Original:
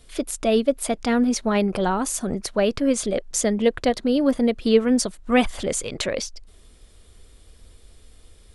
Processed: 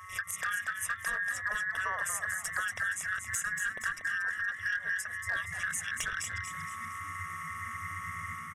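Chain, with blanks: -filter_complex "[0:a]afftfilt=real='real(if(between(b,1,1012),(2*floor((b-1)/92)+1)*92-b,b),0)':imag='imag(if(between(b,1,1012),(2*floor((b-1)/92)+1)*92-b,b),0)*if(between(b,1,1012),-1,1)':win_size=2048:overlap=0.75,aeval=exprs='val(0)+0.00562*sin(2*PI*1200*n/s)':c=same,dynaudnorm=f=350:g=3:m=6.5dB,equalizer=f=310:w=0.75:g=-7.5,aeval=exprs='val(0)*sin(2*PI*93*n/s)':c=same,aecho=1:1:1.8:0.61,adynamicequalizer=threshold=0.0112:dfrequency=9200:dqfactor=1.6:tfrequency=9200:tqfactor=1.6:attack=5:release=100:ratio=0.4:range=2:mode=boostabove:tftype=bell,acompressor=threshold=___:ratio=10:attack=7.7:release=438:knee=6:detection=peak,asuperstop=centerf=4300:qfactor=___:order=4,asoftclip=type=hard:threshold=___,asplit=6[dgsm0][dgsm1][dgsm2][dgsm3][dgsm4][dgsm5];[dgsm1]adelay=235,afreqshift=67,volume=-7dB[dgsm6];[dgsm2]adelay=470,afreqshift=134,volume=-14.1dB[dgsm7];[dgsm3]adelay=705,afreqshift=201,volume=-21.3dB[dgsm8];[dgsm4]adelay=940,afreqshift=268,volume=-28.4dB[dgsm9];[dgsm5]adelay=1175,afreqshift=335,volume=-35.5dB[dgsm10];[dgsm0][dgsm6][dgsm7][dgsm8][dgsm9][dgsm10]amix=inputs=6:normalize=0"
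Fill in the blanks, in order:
-30dB, 2.2, -25dB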